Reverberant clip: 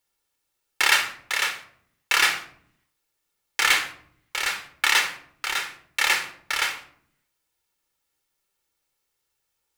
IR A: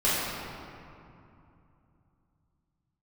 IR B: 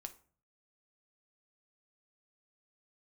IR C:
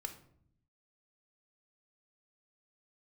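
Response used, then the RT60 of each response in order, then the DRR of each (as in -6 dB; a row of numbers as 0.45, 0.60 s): C; 2.7, 0.45, 0.65 s; -11.0, 6.5, 6.5 dB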